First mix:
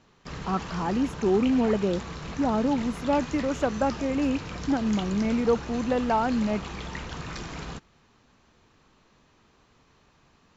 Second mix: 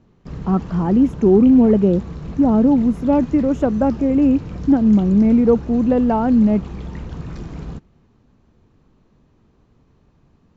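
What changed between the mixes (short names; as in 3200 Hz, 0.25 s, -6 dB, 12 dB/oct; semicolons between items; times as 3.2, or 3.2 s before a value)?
speech +5.5 dB; master: add tilt shelf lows +9.5 dB, about 630 Hz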